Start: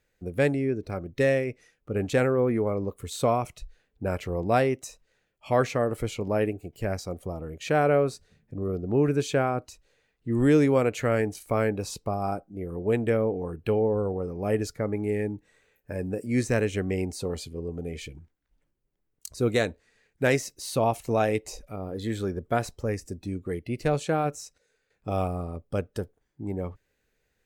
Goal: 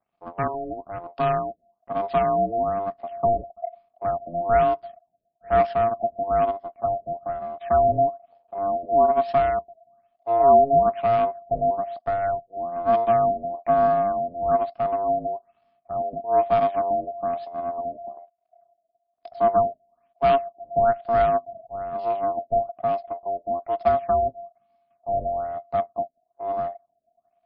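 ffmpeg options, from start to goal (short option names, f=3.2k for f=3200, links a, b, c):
-filter_complex "[0:a]aeval=exprs='if(lt(val(0),0),0.251*val(0),val(0))':c=same,asubboost=boost=6.5:cutoff=51,aeval=exprs='val(0)*sin(2*PI*690*n/s)':c=same,asplit=2[a][b];[b]adynamicsmooth=sensitivity=6.5:basefreq=1.9k,volume=-3dB[c];[a][c]amix=inputs=2:normalize=0,afftfilt=real='re*lt(b*sr/1024,670*pow(5500/670,0.5+0.5*sin(2*PI*1.1*pts/sr)))':imag='im*lt(b*sr/1024,670*pow(5500/670,0.5+0.5*sin(2*PI*1.1*pts/sr)))':win_size=1024:overlap=0.75,volume=-3.5dB"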